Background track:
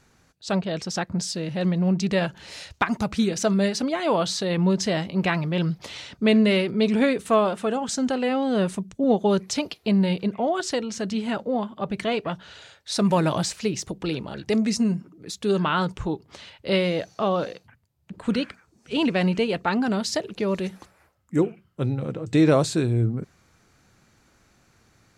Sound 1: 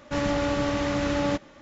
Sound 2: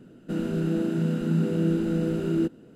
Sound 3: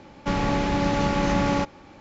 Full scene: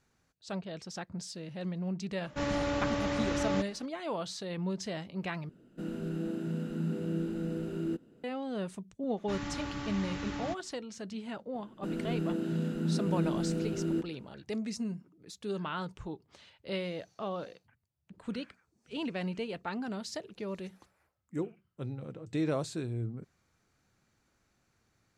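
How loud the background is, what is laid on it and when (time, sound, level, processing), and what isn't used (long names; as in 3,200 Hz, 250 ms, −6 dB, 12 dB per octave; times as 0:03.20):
background track −13.5 dB
0:02.25: mix in 1 −6 dB
0:05.49: overwrite with 2 −9.5 dB
0:09.17: mix in 1 −10.5 dB + parametric band 550 Hz −13 dB 0.53 octaves
0:11.54: mix in 2 −7 dB
not used: 3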